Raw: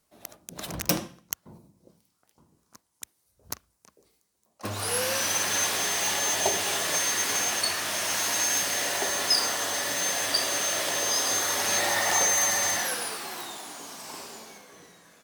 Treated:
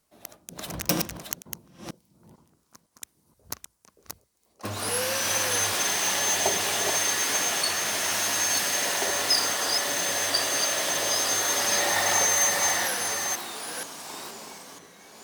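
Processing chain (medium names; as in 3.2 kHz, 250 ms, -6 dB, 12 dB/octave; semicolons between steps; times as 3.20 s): chunks repeated in reverse 477 ms, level -4.5 dB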